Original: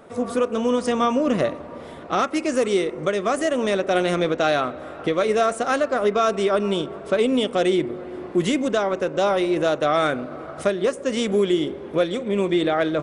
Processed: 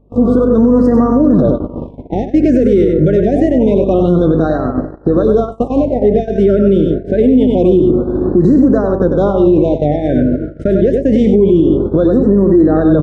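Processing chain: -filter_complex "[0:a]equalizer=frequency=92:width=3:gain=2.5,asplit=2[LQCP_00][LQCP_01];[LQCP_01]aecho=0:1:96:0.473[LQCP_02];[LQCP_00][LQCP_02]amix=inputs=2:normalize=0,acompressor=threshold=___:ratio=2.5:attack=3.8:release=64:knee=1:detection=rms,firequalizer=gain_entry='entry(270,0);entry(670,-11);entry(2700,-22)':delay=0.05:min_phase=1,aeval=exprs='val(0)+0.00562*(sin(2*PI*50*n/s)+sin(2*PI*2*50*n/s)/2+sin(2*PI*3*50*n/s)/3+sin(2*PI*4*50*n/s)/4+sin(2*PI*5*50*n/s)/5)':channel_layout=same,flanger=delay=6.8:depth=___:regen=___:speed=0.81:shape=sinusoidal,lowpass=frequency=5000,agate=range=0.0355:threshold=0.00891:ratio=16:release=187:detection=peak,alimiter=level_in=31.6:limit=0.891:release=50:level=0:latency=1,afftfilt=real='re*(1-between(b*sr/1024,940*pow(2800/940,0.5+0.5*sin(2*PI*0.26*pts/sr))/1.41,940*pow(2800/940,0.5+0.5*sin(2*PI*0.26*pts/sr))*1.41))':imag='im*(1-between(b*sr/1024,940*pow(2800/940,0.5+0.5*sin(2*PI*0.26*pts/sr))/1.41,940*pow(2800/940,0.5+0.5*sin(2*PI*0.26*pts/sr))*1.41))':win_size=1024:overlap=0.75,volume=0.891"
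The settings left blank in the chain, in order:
0.0282, 6, 85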